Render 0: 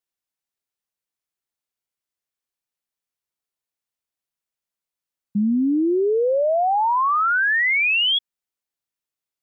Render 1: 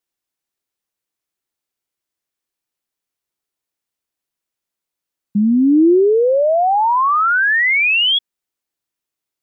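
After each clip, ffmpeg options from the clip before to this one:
-af "equalizer=f=330:w=2.2:g=4.5,volume=1.68"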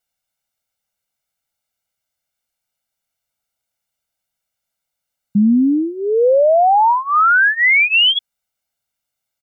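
-af "aecho=1:1:1.4:0.91,alimiter=limit=0.316:level=0:latency=1:release=39,volume=1.19"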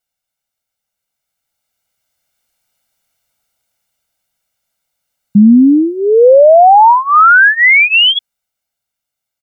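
-af "dynaudnorm=f=300:g=13:m=4.47"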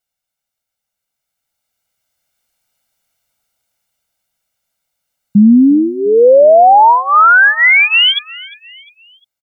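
-af "aecho=1:1:352|704|1056:0.0891|0.0392|0.0173,volume=0.891"

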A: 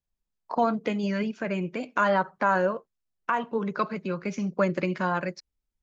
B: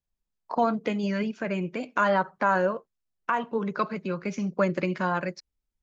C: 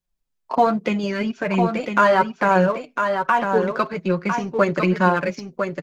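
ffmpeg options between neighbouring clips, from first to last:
-af anull
-filter_complex "[0:a]flanger=delay=5.4:depth=2.7:regen=20:speed=1.2:shape=sinusoidal,asplit=2[s0][s1];[s1]aeval=exprs='sgn(val(0))*max(abs(val(0))-0.00944,0)':c=same,volume=0.501[s2];[s0][s2]amix=inputs=2:normalize=0,aecho=1:1:1003:0.501,volume=2.37"

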